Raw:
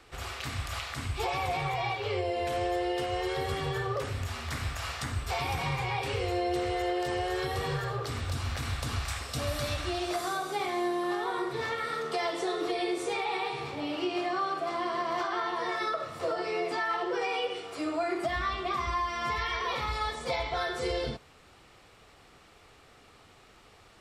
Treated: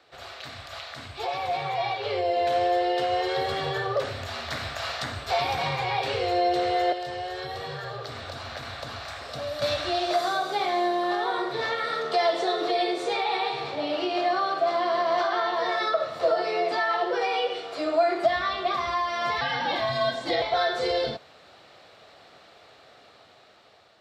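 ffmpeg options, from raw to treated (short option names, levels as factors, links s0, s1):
-filter_complex "[0:a]asettb=1/sr,asplit=3[s0][s1][s2];[s0]atrim=end=6.924[s3];[s1]atrim=start=6.92:end=9.62,asetpts=PTS-STARTPTS,afade=t=in:d=0.004:c=qsin,afade=t=out:st=2.696:d=0.004:c=qsin,acrossover=split=170|400|2100[s4][s5][s6][s7];[s4]acompressor=threshold=0.01:ratio=3[s8];[s5]acompressor=threshold=0.00251:ratio=3[s9];[s6]acompressor=threshold=0.00708:ratio=3[s10];[s7]acompressor=threshold=0.00355:ratio=3[s11];[s8][s9][s10][s11]amix=inputs=4:normalize=0[s12];[s2]atrim=start=9.616[s13];[s3][s12]acrossfade=d=0.004:c1=hsin:c2=qsin[s14];[s14][s13]acrossfade=d=0.004:c1=qsin:c2=hsin,asettb=1/sr,asplit=3[s15][s16][s17];[s15]atrim=end=19.414[s18];[s16]atrim=start=19.41:end=20.42,asetpts=PTS-STARTPTS,afade=t=in:d=0.004:c=qsin,afade=t=out:st=1.006:d=0.004:c=qsin,afreqshift=-190[s19];[s17]atrim=start=20.416[s20];[s18][s19]acrossfade=d=0.004:c1=hsin:c2=qsin[s21];[s21][s20]acrossfade=d=0.004:c1=qsin:c2=hsin,equalizer=f=630:t=o:w=0.67:g=12,equalizer=f=1600:t=o:w=0.67:g=5,equalizer=f=4000:t=o:w=0.67:g=10,equalizer=f=10000:t=o:w=0.67:g=-8,dynaudnorm=f=720:g=5:m=2.37,highpass=110,volume=0.422"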